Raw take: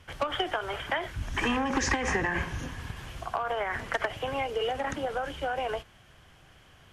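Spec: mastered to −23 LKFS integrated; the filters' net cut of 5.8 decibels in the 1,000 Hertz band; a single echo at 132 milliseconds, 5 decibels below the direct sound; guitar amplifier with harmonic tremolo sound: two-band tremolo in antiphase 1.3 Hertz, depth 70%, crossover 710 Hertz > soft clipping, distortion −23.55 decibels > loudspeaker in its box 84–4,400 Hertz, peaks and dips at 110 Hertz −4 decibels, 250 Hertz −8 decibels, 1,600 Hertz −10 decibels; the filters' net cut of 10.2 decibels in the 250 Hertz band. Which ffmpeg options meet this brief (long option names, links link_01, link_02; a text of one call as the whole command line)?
ffmpeg -i in.wav -filter_complex "[0:a]equalizer=frequency=250:width_type=o:gain=-7.5,equalizer=frequency=1000:width_type=o:gain=-6.5,aecho=1:1:132:0.562,acrossover=split=710[link_01][link_02];[link_01]aeval=exprs='val(0)*(1-0.7/2+0.7/2*cos(2*PI*1.3*n/s))':channel_layout=same[link_03];[link_02]aeval=exprs='val(0)*(1-0.7/2-0.7/2*cos(2*PI*1.3*n/s))':channel_layout=same[link_04];[link_03][link_04]amix=inputs=2:normalize=0,asoftclip=threshold=-22dB,highpass=84,equalizer=frequency=110:width_type=q:width=4:gain=-4,equalizer=frequency=250:width_type=q:width=4:gain=-8,equalizer=frequency=1600:width_type=q:width=4:gain=-10,lowpass=frequency=4400:width=0.5412,lowpass=frequency=4400:width=1.3066,volume=15.5dB" out.wav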